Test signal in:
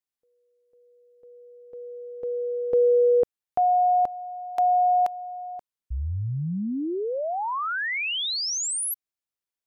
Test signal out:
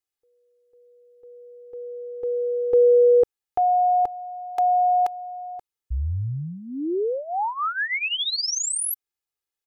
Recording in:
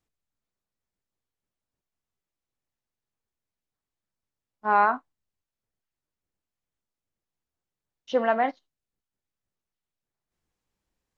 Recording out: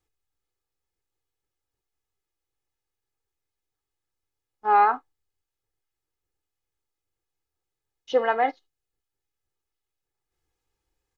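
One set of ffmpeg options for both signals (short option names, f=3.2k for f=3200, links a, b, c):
-af "aecho=1:1:2.4:0.72"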